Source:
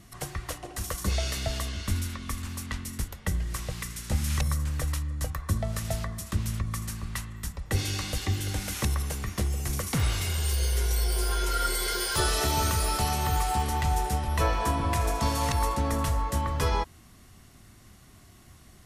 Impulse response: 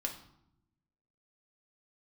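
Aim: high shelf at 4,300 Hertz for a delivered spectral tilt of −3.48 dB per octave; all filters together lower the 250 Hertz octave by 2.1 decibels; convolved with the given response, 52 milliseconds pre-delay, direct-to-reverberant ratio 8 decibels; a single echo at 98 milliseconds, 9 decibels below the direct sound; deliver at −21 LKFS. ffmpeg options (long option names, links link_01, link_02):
-filter_complex "[0:a]equalizer=frequency=250:width_type=o:gain=-3,highshelf=frequency=4300:gain=4,aecho=1:1:98:0.355,asplit=2[link_01][link_02];[1:a]atrim=start_sample=2205,adelay=52[link_03];[link_02][link_03]afir=irnorm=-1:irlink=0,volume=-9dB[link_04];[link_01][link_04]amix=inputs=2:normalize=0,volume=6.5dB"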